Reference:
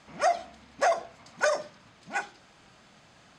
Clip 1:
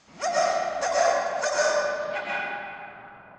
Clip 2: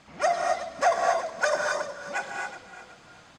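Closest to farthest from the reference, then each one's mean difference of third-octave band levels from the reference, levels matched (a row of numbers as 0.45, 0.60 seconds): 2, 1; 6.0, 8.5 decibels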